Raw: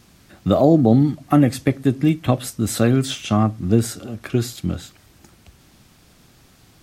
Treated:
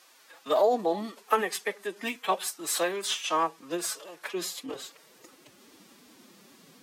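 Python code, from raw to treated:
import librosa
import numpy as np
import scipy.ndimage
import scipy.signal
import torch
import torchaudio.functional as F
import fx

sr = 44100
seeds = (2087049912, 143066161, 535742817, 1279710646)

y = fx.filter_sweep_highpass(x, sr, from_hz=780.0, to_hz=180.0, start_s=4.15, end_s=5.96, q=1.0)
y = fx.pitch_keep_formants(y, sr, semitones=7.0)
y = y * 10.0 ** (-1.5 / 20.0)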